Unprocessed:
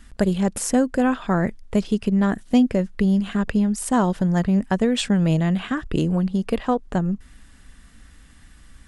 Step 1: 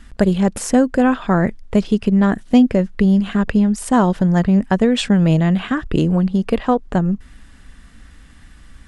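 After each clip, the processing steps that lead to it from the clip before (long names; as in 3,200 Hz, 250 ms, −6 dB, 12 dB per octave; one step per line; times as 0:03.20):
high-shelf EQ 6,900 Hz −8.5 dB
level +5 dB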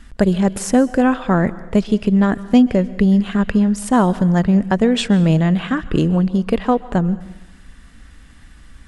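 dense smooth reverb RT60 0.92 s, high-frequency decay 0.9×, pre-delay 115 ms, DRR 17.5 dB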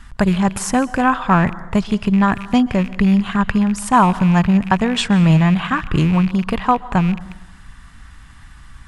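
loose part that buzzes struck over −30 dBFS, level −24 dBFS
octave-band graphic EQ 125/250/500/1,000 Hz +6/−5/−9/+9 dB
level +1.5 dB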